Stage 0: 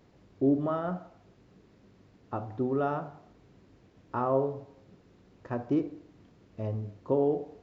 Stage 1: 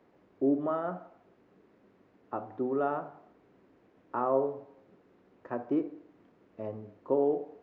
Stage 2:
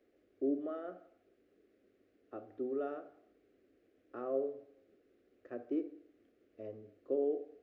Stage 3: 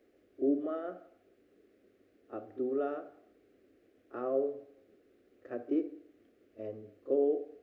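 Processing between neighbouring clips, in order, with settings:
three-band isolator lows -16 dB, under 220 Hz, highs -14 dB, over 2500 Hz
fixed phaser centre 390 Hz, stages 4; gain -5.5 dB
reverse echo 31 ms -15.5 dB; gain +4.5 dB

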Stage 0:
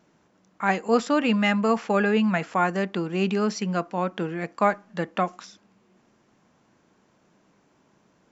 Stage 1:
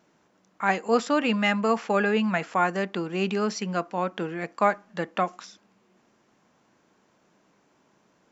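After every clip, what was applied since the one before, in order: low shelf 190 Hz -7.5 dB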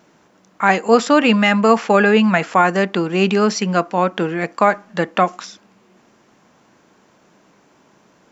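maximiser +11.5 dB; gain -1 dB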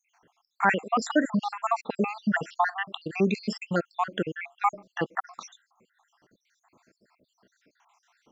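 random spectral dropouts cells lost 73%; gain -6 dB

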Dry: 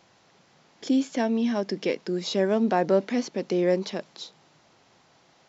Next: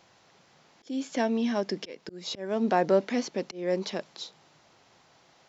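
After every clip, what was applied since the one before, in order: auto swell 0.301 s; bell 220 Hz -3 dB 1.7 oct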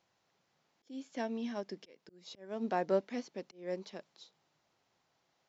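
upward expander 1.5:1, over -38 dBFS; gain -7 dB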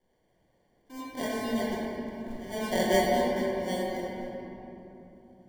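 sample-and-hold 34×; shoebox room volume 180 m³, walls hard, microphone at 1 m

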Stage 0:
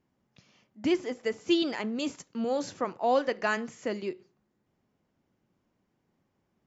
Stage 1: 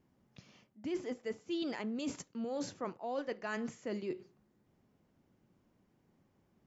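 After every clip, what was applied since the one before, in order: low shelf 500 Hz +4.5 dB; reverse; compressor 6:1, threshold -36 dBFS, peak gain reduction 17.5 dB; reverse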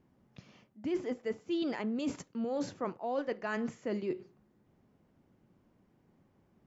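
high shelf 3700 Hz -8.5 dB; gain +4 dB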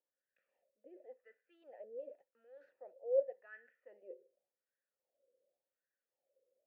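wah 0.89 Hz 490–1600 Hz, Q 8.4; vowel filter e; gain +7 dB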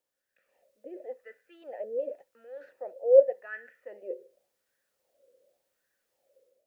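AGC gain up to 7 dB; gain +7.5 dB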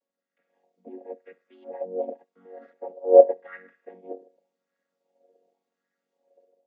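chord vocoder major triad, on F#3; gain +5 dB

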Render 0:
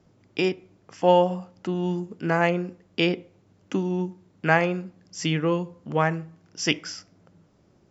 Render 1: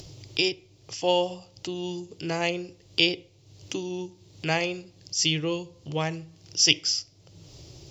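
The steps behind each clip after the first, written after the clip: EQ curve 140 Hz 0 dB, 210 Hz -22 dB, 310 Hz -6 dB, 880 Hz -10 dB, 1500 Hz -16 dB, 2800 Hz +3 dB, 4700 Hz +10 dB, 9200 Hz +3 dB; upward compressor, threshold -35 dBFS; gain +2.5 dB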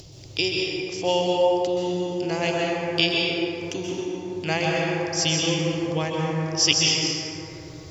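plate-style reverb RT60 3.9 s, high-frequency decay 0.3×, pre-delay 0.115 s, DRR -3.5 dB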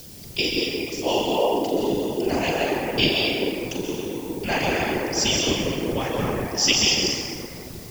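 flutter echo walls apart 7.2 m, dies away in 0.36 s; whisperiser; added noise blue -45 dBFS

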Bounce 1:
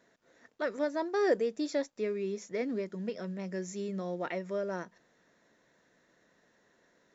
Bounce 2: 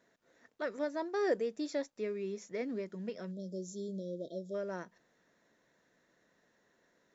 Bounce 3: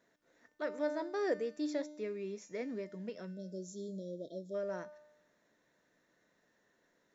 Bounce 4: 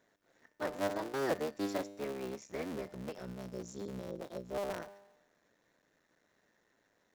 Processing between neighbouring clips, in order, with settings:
spectral delete 3.31–4.55, 680–3200 Hz; gain -4 dB
resonator 300 Hz, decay 0.91 s, mix 70%; gain +7.5 dB
cycle switcher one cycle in 3, muted; gain +2 dB

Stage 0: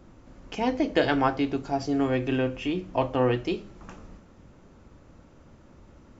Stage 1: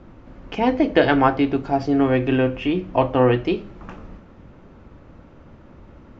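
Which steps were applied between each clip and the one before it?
LPF 3200 Hz 12 dB/oct; gain +7 dB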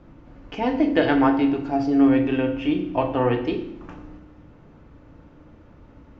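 FDN reverb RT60 0.75 s, low-frequency decay 1.55×, high-frequency decay 0.95×, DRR 5 dB; gain -5 dB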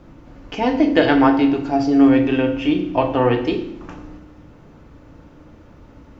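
tone controls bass -1 dB, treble +7 dB; gain +4.5 dB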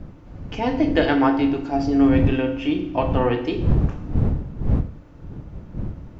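wind noise 130 Hz -21 dBFS; gain -4 dB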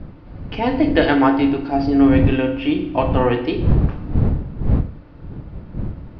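elliptic low-pass 4700 Hz, stop band 60 dB; gain +4 dB

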